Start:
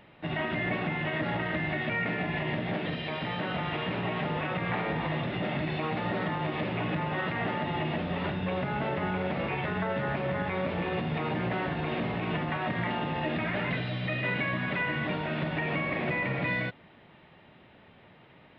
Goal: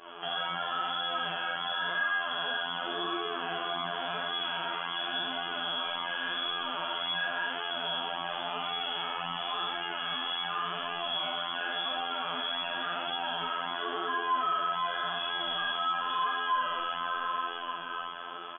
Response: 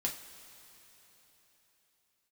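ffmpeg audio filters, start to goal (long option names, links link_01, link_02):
-filter_complex "[0:a]acrossover=split=250|520[link_01][link_02][link_03];[link_03]aexciter=amount=7.8:drive=2.9:freq=2200[link_04];[link_01][link_02][link_04]amix=inputs=3:normalize=0[link_05];[1:a]atrim=start_sample=2205,asetrate=31311,aresample=44100[link_06];[link_05][link_06]afir=irnorm=-1:irlink=0,lowpass=frequency=3000:width_type=q:width=0.5098,lowpass=frequency=3000:width_type=q:width=0.6013,lowpass=frequency=3000:width_type=q:width=0.9,lowpass=frequency=3000:width_type=q:width=2.563,afreqshift=-3500,lowshelf=frequency=120:width_type=q:width=1.5:gain=-11.5,asplit=2[link_07][link_08];[link_08]adelay=44,volume=-5dB[link_09];[link_07][link_09]amix=inputs=2:normalize=0,aecho=1:1:40|58:0.447|0.562,afftfilt=real='hypot(re,im)*cos(PI*b)':imag='0':win_size=2048:overlap=0.75,flanger=delay=2.4:depth=8.3:regen=23:speed=0.91:shape=sinusoidal,alimiter=limit=-24dB:level=0:latency=1:release=41,aemphasis=mode=reproduction:type=50kf,volume=5dB"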